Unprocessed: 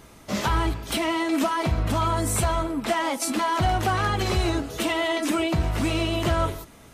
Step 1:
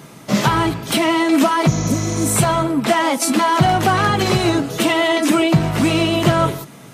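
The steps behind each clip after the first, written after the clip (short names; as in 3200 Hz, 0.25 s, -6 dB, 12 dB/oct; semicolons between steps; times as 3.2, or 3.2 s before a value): resonant low shelf 100 Hz -11 dB, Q 3; spectral repair 1.7–2.28, 590–7100 Hz after; HPF 42 Hz; gain +8 dB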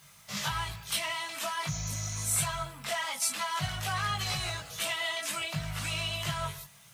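passive tone stack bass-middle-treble 10-0-10; chorus voices 6, 0.89 Hz, delay 20 ms, depth 1 ms; added noise blue -62 dBFS; gain -5 dB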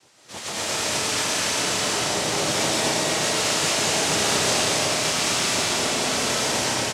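noise vocoder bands 2; loudspeakers at several distances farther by 78 m -1 dB, 89 m -3 dB; reverb RT60 4.5 s, pre-delay 85 ms, DRR -7.5 dB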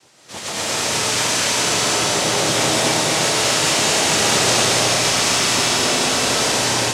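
split-band echo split 740 Hz, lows 84 ms, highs 0.292 s, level -6 dB; gain +4 dB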